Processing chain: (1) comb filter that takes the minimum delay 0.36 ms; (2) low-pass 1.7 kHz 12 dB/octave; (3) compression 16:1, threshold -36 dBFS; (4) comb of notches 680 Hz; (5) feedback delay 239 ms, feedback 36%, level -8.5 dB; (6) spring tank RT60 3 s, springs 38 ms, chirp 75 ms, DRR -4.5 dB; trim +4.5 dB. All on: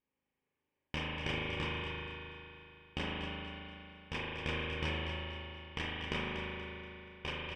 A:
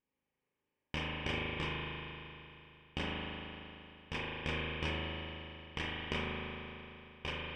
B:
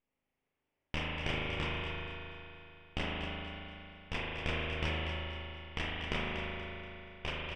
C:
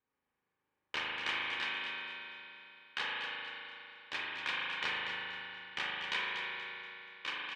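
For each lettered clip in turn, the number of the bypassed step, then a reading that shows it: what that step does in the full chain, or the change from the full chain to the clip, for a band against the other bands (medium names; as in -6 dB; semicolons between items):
5, momentary loudness spread change +2 LU; 4, loudness change +1.0 LU; 1, 125 Hz band -24.0 dB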